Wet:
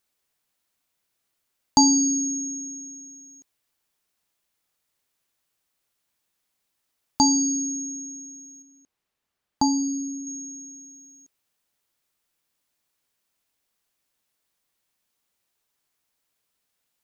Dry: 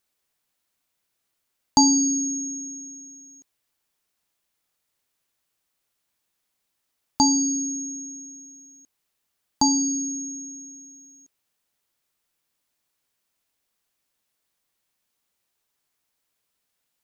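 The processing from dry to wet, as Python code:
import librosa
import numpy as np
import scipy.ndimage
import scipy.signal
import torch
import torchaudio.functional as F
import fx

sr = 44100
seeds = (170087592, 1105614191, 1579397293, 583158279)

y = fx.high_shelf(x, sr, hz=4300.0, db=-10.5, at=(8.62, 10.27))
y = fx.quant_float(y, sr, bits=8)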